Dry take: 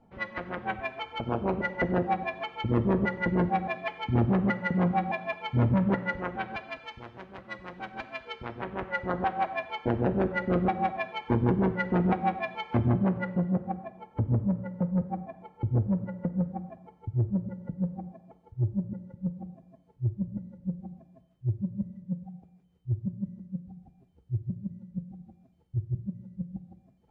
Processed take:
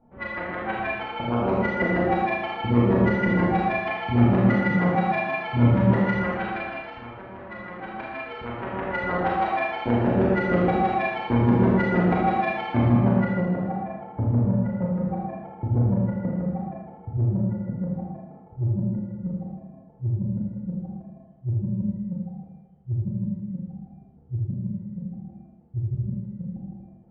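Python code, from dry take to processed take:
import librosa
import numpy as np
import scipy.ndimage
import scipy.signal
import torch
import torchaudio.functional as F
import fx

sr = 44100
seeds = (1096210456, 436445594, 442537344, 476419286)

y = fx.env_lowpass(x, sr, base_hz=1300.0, full_db=-21.5)
y = fx.rev_schroeder(y, sr, rt60_s=1.2, comb_ms=26, drr_db=-5.0)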